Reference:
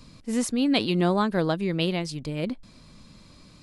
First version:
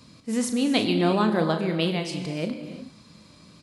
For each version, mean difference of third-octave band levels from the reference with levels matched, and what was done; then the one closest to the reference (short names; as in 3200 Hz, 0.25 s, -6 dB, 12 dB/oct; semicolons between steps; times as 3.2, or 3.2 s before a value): 3.5 dB: HPF 100 Hz; doubler 37 ms -10 dB; non-linear reverb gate 0.38 s flat, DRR 7 dB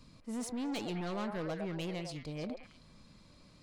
5.0 dB: high shelf 4300 Hz -2.5 dB; soft clip -25.5 dBFS, distortion -8 dB; on a send: delay with a stepping band-pass 0.107 s, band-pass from 660 Hz, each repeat 1.4 oct, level -1 dB; on the sum: gain -8.5 dB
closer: first